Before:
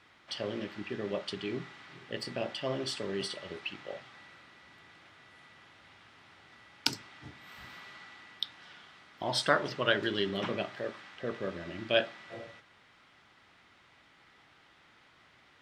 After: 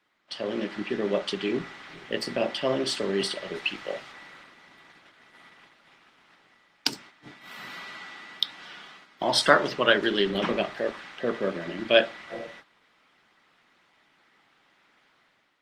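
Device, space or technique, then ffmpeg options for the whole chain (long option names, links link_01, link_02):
video call: -filter_complex "[0:a]asettb=1/sr,asplit=3[link_01][link_02][link_03];[link_01]atrim=end=3.554[link_04];[link_02]atrim=start=3.55:end=4.12,asetpts=PTS-STARTPTS,afade=type=in:duration=0.004:curve=qsin,afade=type=out:start_time=0.566:duration=0.004:curve=qsin,highshelf=frequency=3600:gain=5[link_05];[link_03]atrim=start=4.116[link_06];[link_04][link_05]acrossfade=duration=0.004:curve1=hsin:curve2=qsin[link_07];[link_07][link_06]acrossfade=duration=0.004:curve1=qsin:curve2=hsin,highpass=frequency=160:width=0.5412,highpass=frequency=160:width=1.3066,dynaudnorm=framelen=180:gausssize=5:maxgain=9dB,agate=range=-9dB:threshold=-47dB:ratio=16:detection=peak" -ar 48000 -c:a libopus -b:a 20k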